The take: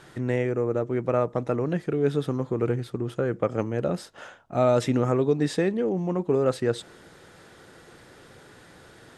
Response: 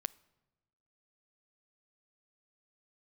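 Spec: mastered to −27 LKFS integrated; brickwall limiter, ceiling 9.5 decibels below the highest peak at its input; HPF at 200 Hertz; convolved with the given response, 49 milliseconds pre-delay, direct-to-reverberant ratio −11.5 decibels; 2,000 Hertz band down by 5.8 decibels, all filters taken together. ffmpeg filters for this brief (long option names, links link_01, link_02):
-filter_complex "[0:a]highpass=200,equalizer=frequency=2000:width_type=o:gain=-7.5,alimiter=limit=-21.5dB:level=0:latency=1,asplit=2[link_01][link_02];[1:a]atrim=start_sample=2205,adelay=49[link_03];[link_02][link_03]afir=irnorm=-1:irlink=0,volume=12.5dB[link_04];[link_01][link_04]amix=inputs=2:normalize=0,volume=-7dB"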